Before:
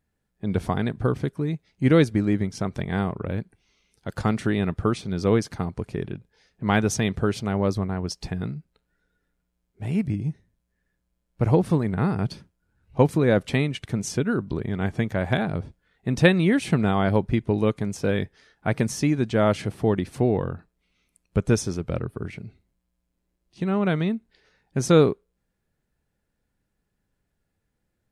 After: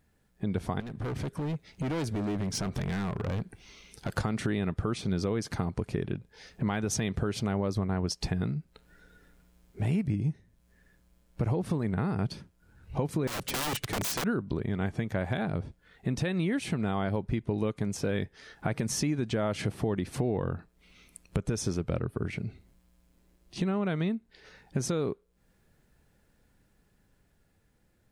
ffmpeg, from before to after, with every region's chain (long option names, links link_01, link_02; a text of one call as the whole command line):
ffmpeg -i in.wav -filter_complex "[0:a]asettb=1/sr,asplit=3[link_01][link_02][link_03];[link_01]atrim=end=0.804[link_04];[link_02]atrim=start=0.8:end=4.13,asetpts=PTS-STARTPTS,afade=type=in:duration=0.004:curve=qsin,afade=type=out:start_time=3.326:duration=0.004:curve=qsin,acompressor=threshold=-30dB:ratio=2.5:attack=3.2:release=140:knee=1:detection=peak,asoftclip=type=hard:threshold=-34dB[link_05];[link_03]atrim=start=4.126[link_06];[link_04][link_05]acrossfade=duration=0.004:curve1=hsin:curve2=qsin[link_07];[link_07][link_06]acrossfade=duration=0.004:curve1=qsin:curve2=hsin,asettb=1/sr,asplit=3[link_08][link_09][link_10];[link_08]atrim=end=13.274[link_11];[link_09]atrim=start=13.27:end=14.24,asetpts=PTS-STARTPTS,afade=type=in:duration=0.004:curve=qsin,afade=type=out:start_time=0.966:duration=0.004:curve=qsin,aecho=1:1:7.1:0.69,atrim=end_sample=42777,acrossover=split=190|3000[link_12][link_13][link_14];[link_13]acompressor=threshold=-42dB:ratio=2:attack=3.2:release=140:knee=2.83:detection=peak[link_15];[link_12][link_15][link_14]amix=inputs=3:normalize=0,aeval=exprs='(mod(22.4*val(0)+1,2)-1)/22.4':channel_layout=same[link_16];[link_10]atrim=start=14.236[link_17];[link_11][link_16]acrossfade=duration=0.004:curve1=hsin:curve2=qsin[link_18];[link_18][link_17]acrossfade=duration=0.004:curve1=qsin:curve2=hsin,dynaudnorm=framelen=250:gausssize=13:maxgain=9dB,alimiter=limit=-11.5dB:level=0:latency=1:release=116,acompressor=threshold=-42dB:ratio=2.5,volume=7.5dB" out.wav